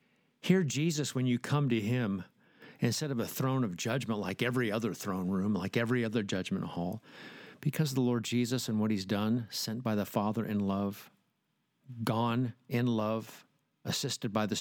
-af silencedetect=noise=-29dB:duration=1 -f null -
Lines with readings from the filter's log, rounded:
silence_start: 10.89
silence_end: 12.03 | silence_duration: 1.14